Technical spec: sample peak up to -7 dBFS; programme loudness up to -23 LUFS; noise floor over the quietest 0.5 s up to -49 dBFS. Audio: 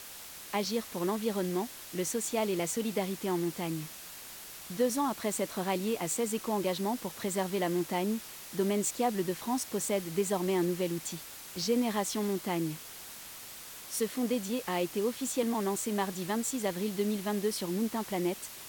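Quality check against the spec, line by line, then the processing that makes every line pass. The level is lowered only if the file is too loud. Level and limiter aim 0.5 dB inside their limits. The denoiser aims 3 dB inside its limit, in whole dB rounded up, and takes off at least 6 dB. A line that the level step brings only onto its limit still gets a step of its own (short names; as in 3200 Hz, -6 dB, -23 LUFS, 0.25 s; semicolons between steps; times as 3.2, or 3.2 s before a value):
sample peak -18.0 dBFS: OK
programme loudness -32.5 LUFS: OK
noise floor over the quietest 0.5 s -46 dBFS: fail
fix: denoiser 6 dB, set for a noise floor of -46 dBFS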